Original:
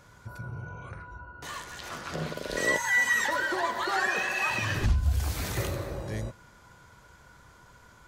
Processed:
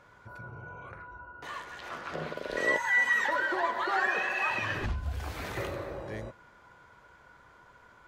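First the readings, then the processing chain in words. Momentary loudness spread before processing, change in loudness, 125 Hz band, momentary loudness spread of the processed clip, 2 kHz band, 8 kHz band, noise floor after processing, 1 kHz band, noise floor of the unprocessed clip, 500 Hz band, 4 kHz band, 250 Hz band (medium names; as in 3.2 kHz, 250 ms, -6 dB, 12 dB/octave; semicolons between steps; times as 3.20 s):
18 LU, -1.5 dB, -8.5 dB, 21 LU, -1.0 dB, -12.0 dB, -58 dBFS, 0.0 dB, -55 dBFS, -0.5 dB, -5.5 dB, -4.0 dB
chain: tone controls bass -9 dB, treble -14 dB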